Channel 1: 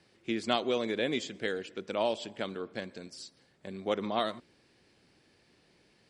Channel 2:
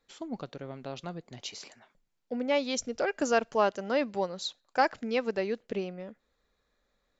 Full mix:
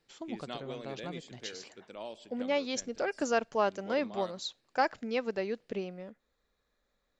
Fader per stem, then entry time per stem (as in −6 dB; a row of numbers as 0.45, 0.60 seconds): −13.0, −3.0 decibels; 0.00, 0.00 seconds